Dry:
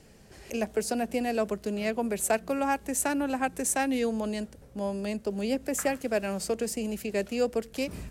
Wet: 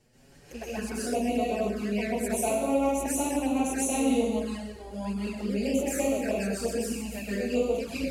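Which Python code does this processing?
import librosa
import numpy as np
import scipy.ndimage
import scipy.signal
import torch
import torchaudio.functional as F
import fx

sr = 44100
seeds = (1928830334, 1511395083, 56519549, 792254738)

y = fx.rev_plate(x, sr, seeds[0], rt60_s=1.2, hf_ratio=0.9, predelay_ms=115, drr_db=-9.5)
y = fx.env_flanger(y, sr, rest_ms=8.5, full_db=-15.5)
y = y * librosa.db_to_amplitude(-7.0)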